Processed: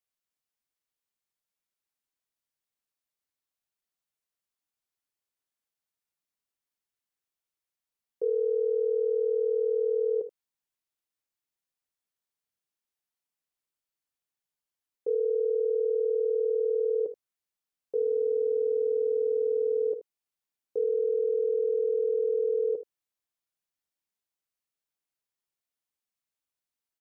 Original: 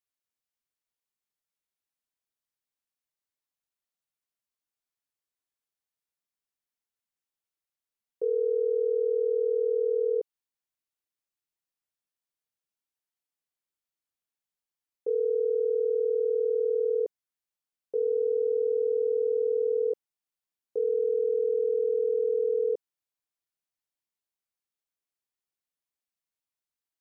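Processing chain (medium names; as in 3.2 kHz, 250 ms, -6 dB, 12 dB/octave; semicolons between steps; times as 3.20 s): early reflections 57 ms -16 dB, 78 ms -15 dB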